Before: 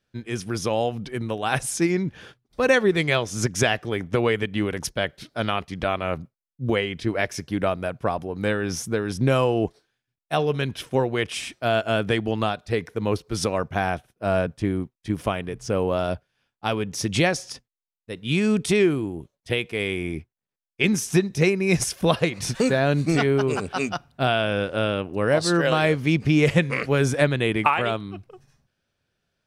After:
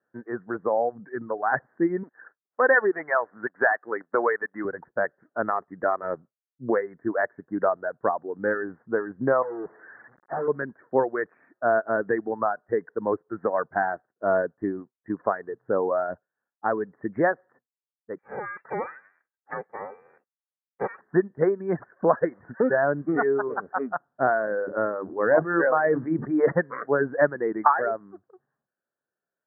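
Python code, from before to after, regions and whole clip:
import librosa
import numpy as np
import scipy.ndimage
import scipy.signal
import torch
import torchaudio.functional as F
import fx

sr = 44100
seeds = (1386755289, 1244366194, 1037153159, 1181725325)

y = fx.chain(x, sr, fx.highpass(hz=1200.0, slope=6),
    fx.leveller(passes=2), at=(2.03, 4.65))
y = fx.chain(y, sr, fx.delta_mod(bps=16000, step_db=-35.0),
    fx.clip_hard(threshold_db=-25.0), at=(9.42, 10.48))
y = fx.chain(y, sr, fx.lower_of_two(delay_ms=2.7),
    fx.freq_invert(carrier_hz=2700), at=(18.18, 21.01))
y = fx.chain(y, sr, fx.hum_notches(base_hz=50, count=8),
    fx.sustainer(db_per_s=31.0), at=(24.47, 26.52))
y = scipy.signal.sosfilt(scipy.signal.butter(2, 310.0, 'highpass', fs=sr, output='sos'), y)
y = fx.dereverb_blind(y, sr, rt60_s=1.9)
y = scipy.signal.sosfilt(scipy.signal.butter(16, 1800.0, 'lowpass', fs=sr, output='sos'), y)
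y = F.gain(torch.from_numpy(y), 2.0).numpy()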